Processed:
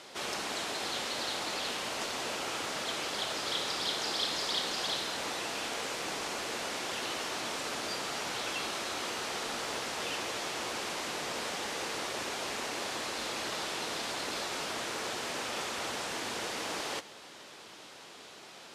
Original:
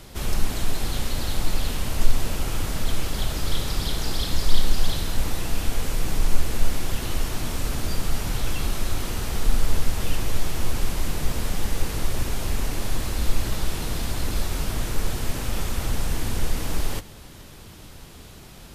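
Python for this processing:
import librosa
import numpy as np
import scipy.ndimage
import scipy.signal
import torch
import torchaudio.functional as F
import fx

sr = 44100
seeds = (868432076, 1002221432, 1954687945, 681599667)

y = fx.bandpass_edges(x, sr, low_hz=450.0, high_hz=6700.0)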